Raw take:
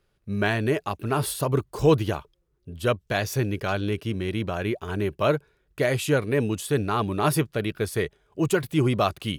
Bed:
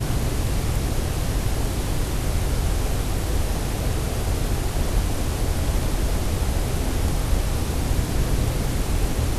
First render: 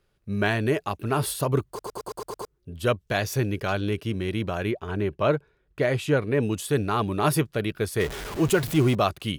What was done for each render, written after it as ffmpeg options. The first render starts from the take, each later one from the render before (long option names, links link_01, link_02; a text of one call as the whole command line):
ffmpeg -i in.wav -filter_complex "[0:a]asettb=1/sr,asplit=3[link_01][link_02][link_03];[link_01]atrim=end=4.714[link_04];[link_02]atrim=start=4.71:end=6.43,asetpts=PTS-STARTPTS,afade=type=in:duration=0.004:curve=qsin,afade=type=out:start_time=1.716:duration=0.004:curve=qsin,lowpass=frequency=3000:poles=1[link_05];[link_03]atrim=start=6.426[link_06];[link_04][link_05]acrossfade=duration=0.004:curve1=hsin:curve2=qsin[link_07];[link_07][link_06]acrossfade=duration=0.004:curve1=qsin:curve2=hsin,asettb=1/sr,asplit=3[link_08][link_09][link_10];[link_08]atrim=end=8.004[link_11];[link_09]atrim=start=8:end=8.95,asetpts=PTS-STARTPTS,afade=type=in:duration=0.004:curve=qsin,afade=type=out:start_time=0.946:duration=0.004:curve=qsin,aeval=exprs='val(0)+0.5*0.0355*sgn(val(0))':channel_layout=same[link_12];[link_10]atrim=start=8.946[link_13];[link_11][link_12]acrossfade=duration=0.004:curve1=hsin:curve2=qsin[link_14];[link_14][link_13]acrossfade=duration=0.004:curve1=qsin:curve2=hsin,asplit=8[link_15][link_16][link_17][link_18][link_19][link_20][link_21][link_22];[link_15]atrim=end=1.792[link_23];[link_16]atrim=start=1.678:end=1.792[link_24];[link_17]atrim=start=1.678:end=1.792[link_25];[link_18]atrim=start=1.678:end=1.792[link_26];[link_19]atrim=start=1.678:end=1.792[link_27];[link_20]atrim=start=1.678:end=1.792[link_28];[link_21]atrim=start=1.678:end=1.792[link_29];[link_22]atrim=start=2.448[link_30];[link_23][link_24]acrossfade=duration=0.004:curve1=hsin:curve2=hsin[link_31];[link_31][link_25]acrossfade=duration=0.004:curve1=hsin:curve2=hsin[link_32];[link_32][link_26]acrossfade=duration=0.004:curve1=hsin:curve2=hsin[link_33];[link_33][link_27]acrossfade=duration=0.004:curve1=hsin:curve2=hsin[link_34];[link_34][link_28]acrossfade=duration=0.004:curve1=hsin:curve2=hsin[link_35];[link_35][link_29]acrossfade=duration=0.004:curve1=hsin:curve2=hsin[link_36];[link_36][link_30]acrossfade=duration=0.004:curve1=hsin:curve2=hsin" out.wav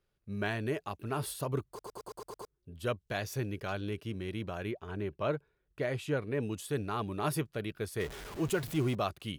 ffmpeg -i in.wav -af "volume=-10dB" out.wav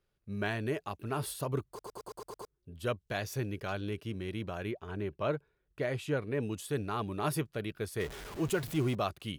ffmpeg -i in.wav -af anull out.wav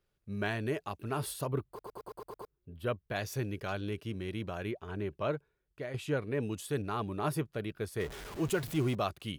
ffmpeg -i in.wav -filter_complex "[0:a]asettb=1/sr,asplit=3[link_01][link_02][link_03];[link_01]atrim=end=1.474[link_04];[link_02]atrim=start=1.47:end=3.16,asetpts=PTS-STARTPTS,afade=type=in:duration=0.004:curve=qsin,afade=type=out:start_time=1.686:duration=0.004:curve=qsin,equalizer=frequency=6700:width=0.96:gain=-14[link_05];[link_03]atrim=start=3.156[link_06];[link_04][link_05]acrossfade=duration=0.004:curve1=hsin:curve2=qsin[link_07];[link_07][link_06]acrossfade=duration=0.004:curve1=qsin:curve2=hsin,asettb=1/sr,asplit=3[link_08][link_09][link_10];[link_08]atrim=end=6.824[link_11];[link_09]atrim=start=6.82:end=8.12,asetpts=PTS-STARTPTS,afade=type=in:duration=0.004:curve=qsin,afade=type=out:start_time=1.296:duration=0.004:curve=qsin,adynamicequalizer=threshold=0.00355:dfrequency=1800:dqfactor=0.7:tfrequency=1800:tqfactor=0.7:attack=5:release=100:ratio=0.375:range=3.5:mode=cutabove:tftype=highshelf[link_12];[link_10]atrim=start=8.116[link_13];[link_11][link_12]acrossfade=duration=0.004:curve1=hsin:curve2=qsin[link_14];[link_14][link_13]acrossfade=duration=0.004:curve1=qsin:curve2=hsin,asplit=2[link_15][link_16];[link_15]atrim=end=5.94,asetpts=PTS-STARTPTS,afade=type=out:start_time=5.16:duration=0.78:silence=0.398107[link_17];[link_16]atrim=start=5.94,asetpts=PTS-STARTPTS,afade=type=in:duration=0.004:curve=hsin:silence=0.398107[link_18];[link_17][link_18]concat=n=2:v=0:a=1" out.wav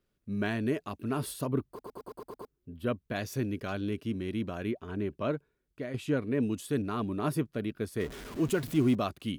ffmpeg -i in.wav -af "equalizer=frequency=250:width=2.2:gain=11,bandreject=frequency=830:width=12" out.wav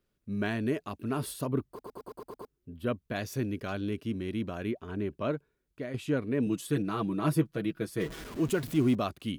ffmpeg -i in.wav -filter_complex "[0:a]asettb=1/sr,asplit=3[link_01][link_02][link_03];[link_01]atrim=end=6.464[link_04];[link_02]atrim=start=6.46:end=8.24,asetpts=PTS-STARTPTS,afade=type=in:duration=0.004:curve=qsin,afade=type=out:start_time=1.776:duration=0.004:curve=qsin,aecho=1:1:6.1:0.76,atrim=end_sample=78498[link_05];[link_03]atrim=start=8.236[link_06];[link_04][link_05]acrossfade=duration=0.004:curve1=hsin:curve2=qsin[link_07];[link_07][link_06]acrossfade=duration=0.004:curve1=qsin:curve2=hsin" out.wav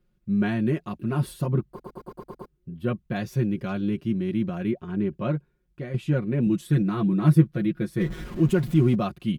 ffmpeg -i in.wav -af "bass=frequency=250:gain=10,treble=frequency=4000:gain=-6,aecho=1:1:5.6:0.78" out.wav